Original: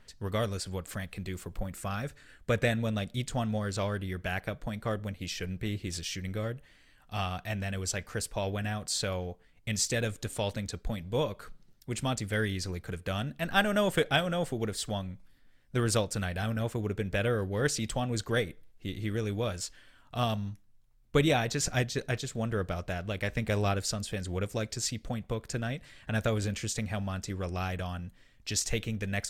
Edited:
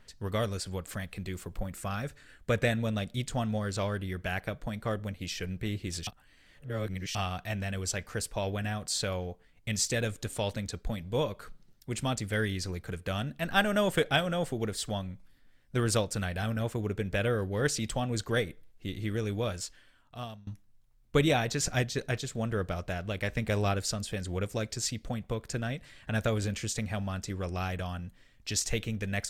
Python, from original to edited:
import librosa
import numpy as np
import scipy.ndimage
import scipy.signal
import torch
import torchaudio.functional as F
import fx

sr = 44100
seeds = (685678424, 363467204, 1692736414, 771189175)

y = fx.edit(x, sr, fx.reverse_span(start_s=6.07, length_s=1.08),
    fx.fade_out_to(start_s=19.51, length_s=0.96, floor_db=-23.0), tone=tone)